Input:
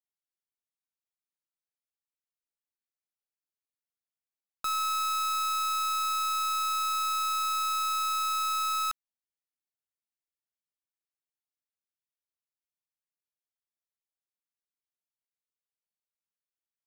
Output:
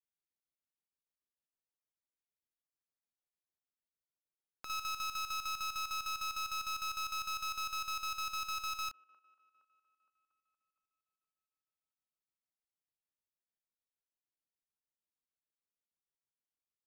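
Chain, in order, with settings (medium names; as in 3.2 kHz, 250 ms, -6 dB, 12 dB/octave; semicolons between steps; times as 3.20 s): self-modulated delay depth 0.098 ms; tilt shelf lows +5.5 dB; on a send: feedback echo behind a band-pass 233 ms, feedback 67%, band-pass 790 Hz, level -20 dB; on the sum: square tremolo 6.6 Hz, depth 65%, duty 65%; trim -5 dB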